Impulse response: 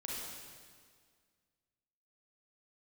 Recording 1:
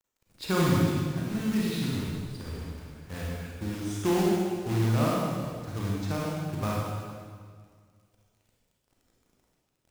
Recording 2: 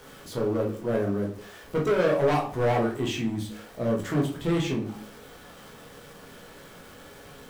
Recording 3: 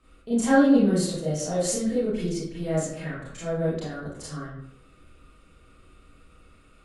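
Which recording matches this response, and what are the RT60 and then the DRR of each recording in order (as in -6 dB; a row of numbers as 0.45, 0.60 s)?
1; 1.9, 0.50, 0.75 s; -5.0, -2.0, -10.5 dB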